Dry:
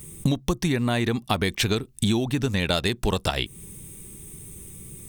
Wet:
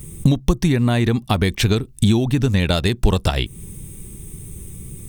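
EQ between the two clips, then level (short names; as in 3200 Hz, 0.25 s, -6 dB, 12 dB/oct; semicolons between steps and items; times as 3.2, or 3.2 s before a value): low shelf 120 Hz +8.5 dB; low shelf 490 Hz +3 dB; +2.0 dB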